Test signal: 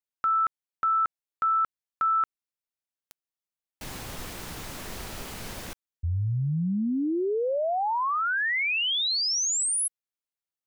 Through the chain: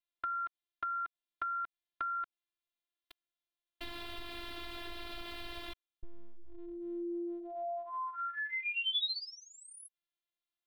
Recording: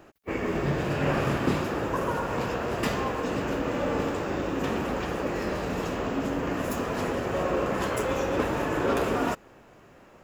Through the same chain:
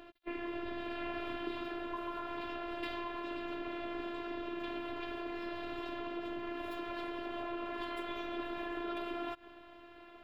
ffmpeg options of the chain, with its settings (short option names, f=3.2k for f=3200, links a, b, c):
-af "afftfilt=real='hypot(re,im)*cos(PI*b)':imag='0':win_size=512:overlap=0.75,acompressor=threshold=-45dB:ratio=2.5:attack=17:release=171:knee=1:detection=peak,highshelf=f=4.9k:t=q:w=3:g=-10.5,volume=1.5dB"